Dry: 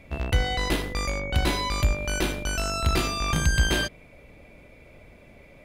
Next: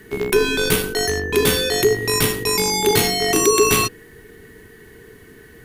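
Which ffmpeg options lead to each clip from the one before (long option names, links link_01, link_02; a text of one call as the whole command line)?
ffmpeg -i in.wav -af "acontrast=46,aemphasis=mode=production:type=50fm,afreqshift=-480" out.wav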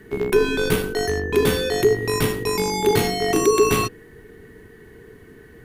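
ffmpeg -i in.wav -af "highshelf=frequency=2200:gain=-9.5" out.wav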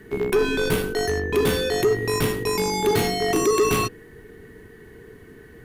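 ffmpeg -i in.wav -af "asoftclip=type=tanh:threshold=-13dB" out.wav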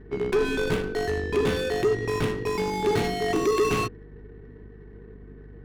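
ffmpeg -i in.wav -af "adynamicsmooth=sensitivity=4.5:basefreq=1000,aeval=exprs='val(0)+0.00794*(sin(2*PI*50*n/s)+sin(2*PI*2*50*n/s)/2+sin(2*PI*3*50*n/s)/3+sin(2*PI*4*50*n/s)/4+sin(2*PI*5*50*n/s)/5)':channel_layout=same,volume=-3dB" out.wav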